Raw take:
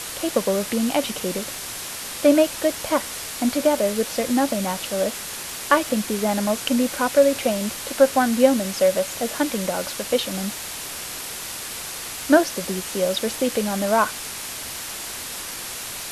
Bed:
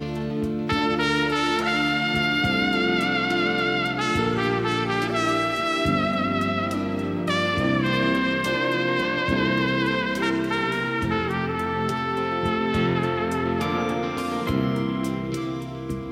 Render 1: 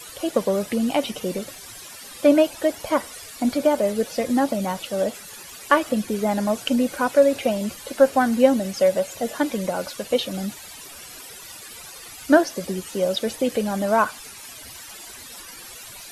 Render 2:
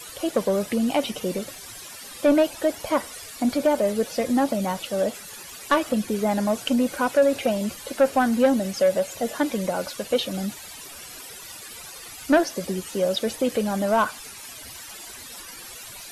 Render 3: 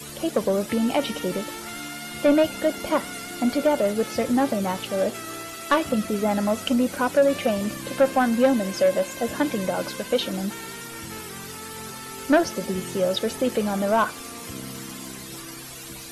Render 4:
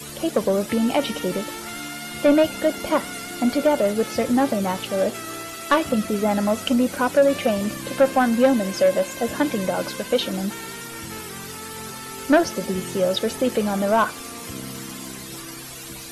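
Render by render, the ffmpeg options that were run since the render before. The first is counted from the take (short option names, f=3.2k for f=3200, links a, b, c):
-af "afftdn=nr=14:nf=-33"
-af "asoftclip=type=tanh:threshold=-11dB"
-filter_complex "[1:a]volume=-14dB[a];[0:a][a]amix=inputs=2:normalize=0"
-af "volume=2dB"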